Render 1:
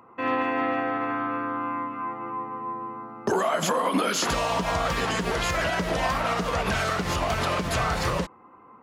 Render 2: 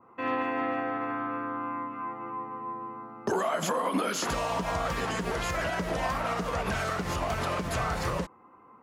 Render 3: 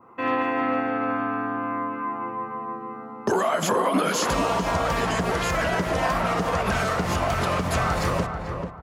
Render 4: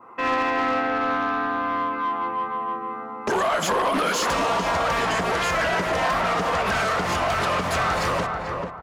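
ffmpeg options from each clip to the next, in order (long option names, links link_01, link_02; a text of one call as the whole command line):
ffmpeg -i in.wav -af "adynamicequalizer=threshold=0.00794:dfrequency=3700:dqfactor=0.9:tfrequency=3700:tqfactor=0.9:attack=5:release=100:ratio=0.375:range=2:mode=cutabove:tftype=bell,volume=-4dB" out.wav
ffmpeg -i in.wav -filter_complex "[0:a]asplit=2[link_01][link_02];[link_02]adelay=439,lowpass=frequency=1300:poles=1,volume=-5dB,asplit=2[link_03][link_04];[link_04]adelay=439,lowpass=frequency=1300:poles=1,volume=0.31,asplit=2[link_05][link_06];[link_06]adelay=439,lowpass=frequency=1300:poles=1,volume=0.31,asplit=2[link_07][link_08];[link_08]adelay=439,lowpass=frequency=1300:poles=1,volume=0.31[link_09];[link_01][link_03][link_05][link_07][link_09]amix=inputs=5:normalize=0,volume=5.5dB" out.wav
ffmpeg -i in.wav -filter_complex "[0:a]aeval=exprs='0.15*(abs(mod(val(0)/0.15+3,4)-2)-1)':channel_layout=same,asplit=2[link_01][link_02];[link_02]highpass=frequency=720:poles=1,volume=12dB,asoftclip=type=tanh:threshold=-16dB[link_03];[link_01][link_03]amix=inputs=2:normalize=0,lowpass=frequency=5000:poles=1,volume=-6dB" out.wav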